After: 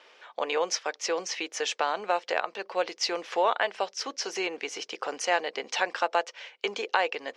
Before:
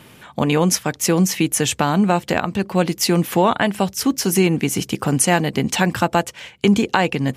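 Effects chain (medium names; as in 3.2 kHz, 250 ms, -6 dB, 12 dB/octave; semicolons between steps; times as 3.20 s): elliptic band-pass 470–5600 Hz, stop band 60 dB; trim -6.5 dB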